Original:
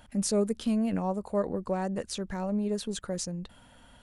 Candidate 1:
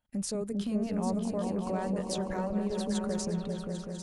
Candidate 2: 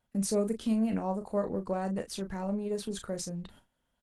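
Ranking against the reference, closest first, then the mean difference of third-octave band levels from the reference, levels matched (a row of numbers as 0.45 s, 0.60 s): 2, 1; 3.5 dB, 7.5 dB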